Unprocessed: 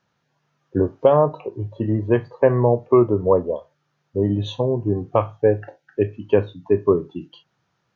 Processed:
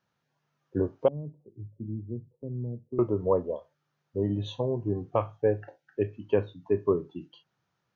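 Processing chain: 1.08–2.99 ladder low-pass 310 Hz, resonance 25%; gain -8 dB

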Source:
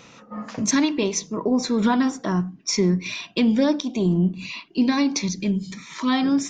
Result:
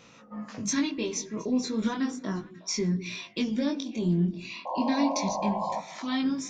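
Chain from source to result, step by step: dynamic EQ 780 Hz, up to -6 dB, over -38 dBFS, Q 0.88; painted sound noise, 4.65–5.8, 500–1100 Hz -25 dBFS; delay with a stepping band-pass 0.18 s, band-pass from 280 Hz, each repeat 1.4 oct, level -11.5 dB; chorus 0.34 Hz, delay 18 ms, depth 5.7 ms; gain -3.5 dB

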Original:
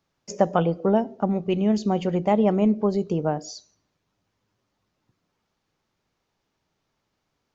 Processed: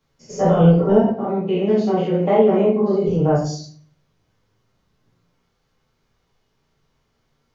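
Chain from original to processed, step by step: stepped spectrum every 0.1 s; 1.01–3.07 BPF 240–4000 Hz; shoebox room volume 32 m³, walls mixed, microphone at 1.5 m; gain -1 dB

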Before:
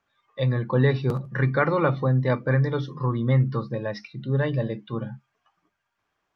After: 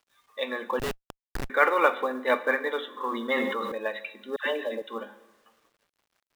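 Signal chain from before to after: bell 280 Hz -13 dB 1.1 oct; tremolo 6 Hz, depth 38%; brick-wall FIR band-pass 220–4000 Hz; two-slope reverb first 0.89 s, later 2.8 s, DRR 11 dB; bit-crush 12-bit; 0.79–1.5 Schmitt trigger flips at -27 dBFS; 4.36–4.82 dispersion lows, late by 0.106 s, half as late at 930 Hz; short-mantissa float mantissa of 4-bit; dynamic EQ 2700 Hz, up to +5 dB, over -49 dBFS, Q 2; 2.93–3.72 sustainer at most 32 dB/s; gain +5 dB

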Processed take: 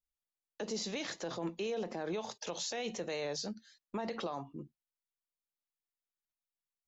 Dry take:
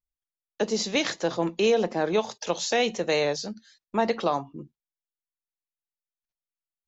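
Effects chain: limiter -23.5 dBFS, peak gain reduction 11.5 dB; gain -5.5 dB

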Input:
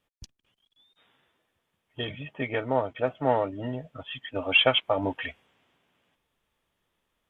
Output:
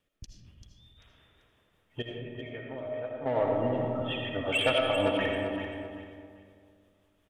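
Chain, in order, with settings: in parallel at -2 dB: compressor, threshold -36 dBFS, peak gain reduction 19 dB; 2.02–3.26 on the sum: resonator 620 Hz, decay 0.41 s, mix 80%; soft clip -15.5 dBFS, distortion -13 dB; rotary speaker horn 5.5 Hz; on a send: feedback echo 0.39 s, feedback 26%, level -9 dB; on the sum: digital reverb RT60 2.1 s, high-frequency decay 0.3×, pre-delay 40 ms, DRR 0 dB; gain -2 dB

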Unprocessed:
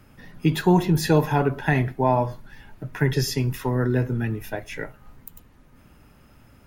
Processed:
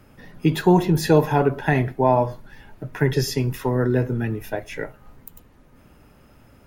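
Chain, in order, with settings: bell 500 Hz +4.5 dB 1.5 oct

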